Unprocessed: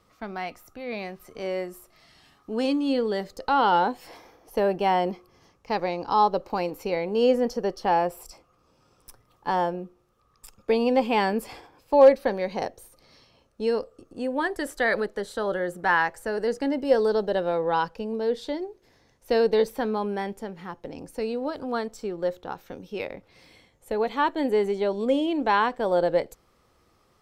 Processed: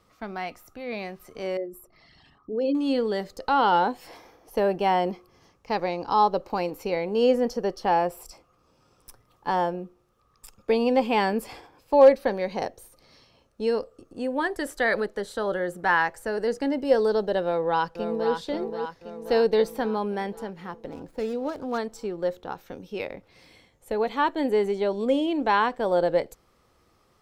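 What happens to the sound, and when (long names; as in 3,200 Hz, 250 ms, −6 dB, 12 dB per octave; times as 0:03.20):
0:01.57–0:02.75: spectral envelope exaggerated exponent 2
0:17.42–0:18.32: delay throw 530 ms, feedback 60%, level −7 dB
0:20.91–0:21.78: running median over 15 samples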